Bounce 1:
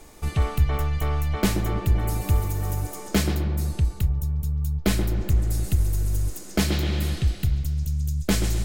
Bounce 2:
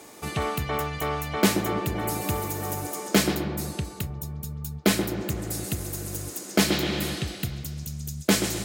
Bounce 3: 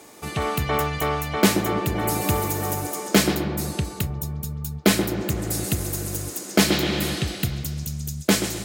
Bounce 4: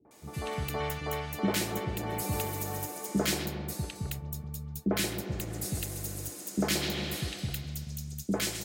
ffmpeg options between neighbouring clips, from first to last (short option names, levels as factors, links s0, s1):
-af "highpass=200,volume=1.58"
-af "dynaudnorm=f=140:g=7:m=1.88"
-filter_complex "[0:a]acrossover=split=320|1300[s0][s1][s2];[s1]adelay=50[s3];[s2]adelay=110[s4];[s0][s3][s4]amix=inputs=3:normalize=0,volume=0.376"